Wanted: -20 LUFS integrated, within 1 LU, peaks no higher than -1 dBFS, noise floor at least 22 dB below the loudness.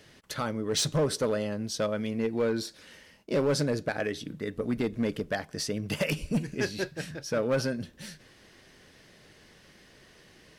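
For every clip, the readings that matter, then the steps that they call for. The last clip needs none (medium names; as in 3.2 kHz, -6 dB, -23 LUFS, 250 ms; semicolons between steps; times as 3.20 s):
clipped samples 1.0%; clipping level -21.0 dBFS; loudness -30.5 LUFS; peak level -21.0 dBFS; loudness target -20.0 LUFS
-> clip repair -21 dBFS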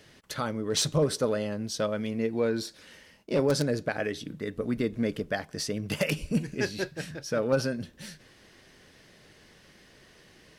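clipped samples 0.0%; loudness -30.0 LUFS; peak level -12.0 dBFS; loudness target -20.0 LUFS
-> trim +10 dB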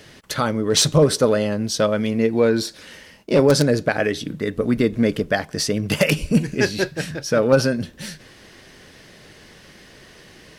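loudness -20.0 LUFS; peak level -2.0 dBFS; noise floor -47 dBFS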